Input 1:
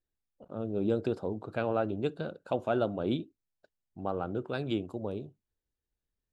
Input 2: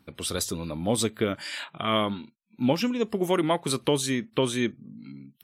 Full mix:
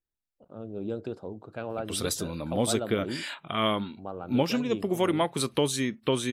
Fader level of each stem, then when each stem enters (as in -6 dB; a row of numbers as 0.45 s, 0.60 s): -4.5 dB, -1.5 dB; 0.00 s, 1.70 s